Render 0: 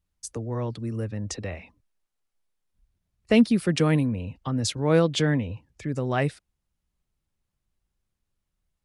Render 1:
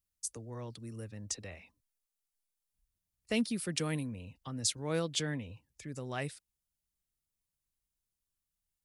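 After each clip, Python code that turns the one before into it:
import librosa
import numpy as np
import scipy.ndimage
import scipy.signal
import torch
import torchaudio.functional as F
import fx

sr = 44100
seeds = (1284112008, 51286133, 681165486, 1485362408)

y = scipy.signal.lfilter([1.0, -0.8], [1.0], x)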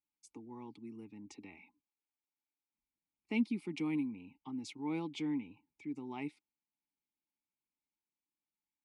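y = fx.vowel_filter(x, sr, vowel='u')
y = y + 0.3 * np.pad(y, (int(4.8 * sr / 1000.0), 0))[:len(y)]
y = F.gain(torch.from_numpy(y), 9.5).numpy()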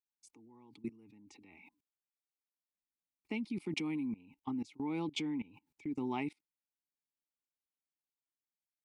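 y = fx.level_steps(x, sr, step_db=23)
y = F.gain(torch.from_numpy(y), 10.0).numpy()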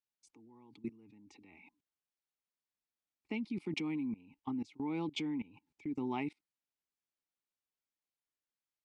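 y = fx.air_absorb(x, sr, metres=58.0)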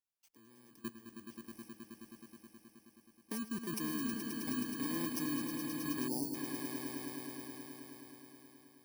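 y = fx.bit_reversed(x, sr, seeds[0], block=32)
y = fx.echo_swell(y, sr, ms=106, loudest=5, wet_db=-8.5)
y = fx.spec_box(y, sr, start_s=6.08, length_s=0.26, low_hz=970.0, high_hz=4300.0, gain_db=-29)
y = F.gain(torch.from_numpy(y), -2.5).numpy()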